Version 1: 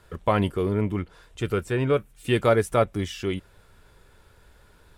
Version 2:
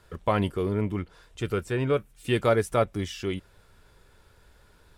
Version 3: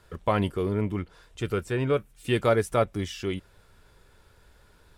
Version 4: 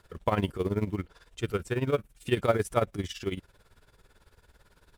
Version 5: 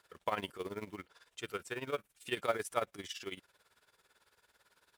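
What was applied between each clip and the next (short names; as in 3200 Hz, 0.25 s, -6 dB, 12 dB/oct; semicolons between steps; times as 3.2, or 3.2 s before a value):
bell 5100 Hz +2.5 dB; gain -2.5 dB
nothing audible
in parallel at -10 dB: short-mantissa float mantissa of 2-bit; on the sum: tremolo 18 Hz, depth 81%; gain -1.5 dB
HPF 940 Hz 6 dB/oct; gain -3 dB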